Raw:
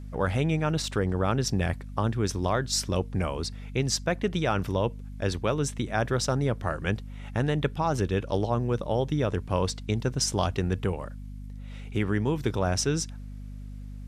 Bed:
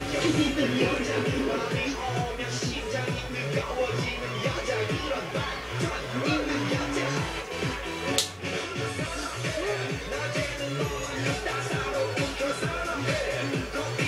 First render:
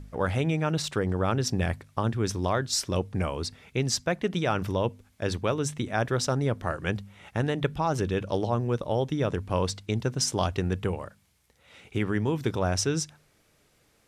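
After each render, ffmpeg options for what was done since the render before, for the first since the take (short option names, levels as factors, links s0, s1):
-af "bandreject=f=50:t=h:w=4,bandreject=f=100:t=h:w=4,bandreject=f=150:t=h:w=4,bandreject=f=200:t=h:w=4,bandreject=f=250:t=h:w=4"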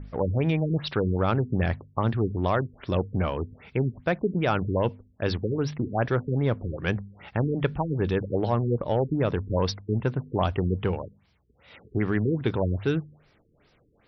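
-filter_complex "[0:a]asplit=2[s0][s1];[s1]asoftclip=type=tanh:threshold=0.0473,volume=0.531[s2];[s0][s2]amix=inputs=2:normalize=0,afftfilt=real='re*lt(b*sr/1024,450*pow(6000/450,0.5+0.5*sin(2*PI*2.5*pts/sr)))':imag='im*lt(b*sr/1024,450*pow(6000/450,0.5+0.5*sin(2*PI*2.5*pts/sr)))':win_size=1024:overlap=0.75"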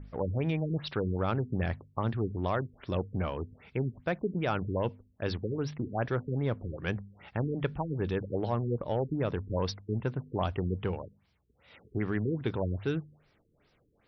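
-af "volume=0.501"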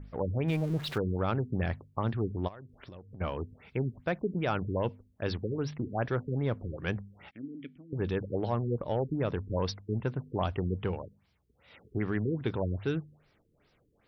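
-filter_complex "[0:a]asettb=1/sr,asplit=3[s0][s1][s2];[s0]atrim=end=0.484[s3];[s1]atrim=start=0.48:end=0.98,asetpts=PTS-STARTPTS,afade=t=in:d=0.004:c=qsin,afade=t=out:st=0.496:d=0.004:c=qsin,aeval=exprs='val(0)+0.5*0.01*sgn(val(0))':c=same[s4];[s2]atrim=start=0.976[s5];[s3][s4]acrossfade=d=0.004:c1=hsin:c2=qsin[s6];[s6][s5]acrossfade=d=0.004:c1=qsin:c2=hsin,asplit=3[s7][s8][s9];[s7]afade=t=out:st=2.47:d=0.02[s10];[s8]acompressor=threshold=0.00708:ratio=16:attack=3.2:release=140:knee=1:detection=peak,afade=t=in:st=2.47:d=0.02,afade=t=out:st=3.2:d=0.02[s11];[s9]afade=t=in:st=3.2:d=0.02[s12];[s10][s11][s12]amix=inputs=3:normalize=0,asettb=1/sr,asplit=3[s13][s14][s15];[s13]atrim=end=7.314[s16];[s14]atrim=start=7.31:end=7.93,asetpts=PTS-STARTPTS,afade=t=in:d=0.004:c=qsin,afade=t=out:st=0.616:d=0.004:c=qsin,asplit=3[s17][s18][s19];[s17]bandpass=f=270:t=q:w=8,volume=1[s20];[s18]bandpass=f=2290:t=q:w=8,volume=0.501[s21];[s19]bandpass=f=3010:t=q:w=8,volume=0.355[s22];[s20][s21][s22]amix=inputs=3:normalize=0[s23];[s15]atrim=start=7.926[s24];[s16][s23]acrossfade=d=0.004:c1=hsin:c2=qsin[s25];[s25][s24]acrossfade=d=0.004:c1=qsin:c2=hsin"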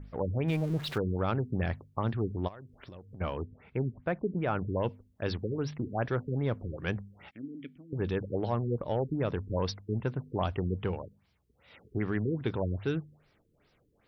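-filter_complex "[0:a]asettb=1/sr,asplit=3[s0][s1][s2];[s0]atrim=end=3.454[s3];[s1]atrim=start=3.45:end=4.76,asetpts=PTS-STARTPTS,afade=t=in:d=0.004:c=qsin,afade=t=out:st=1.306:d=0.004:c=qsin,lowpass=2100[s4];[s2]atrim=start=4.756[s5];[s3][s4]acrossfade=d=0.004:c1=hsin:c2=qsin[s6];[s6][s5]acrossfade=d=0.004:c1=qsin:c2=hsin"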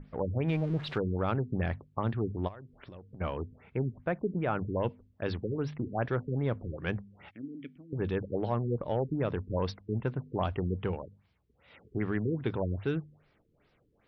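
-af "lowpass=3600,bandreject=f=50:t=h:w=6,bandreject=f=100:t=h:w=6"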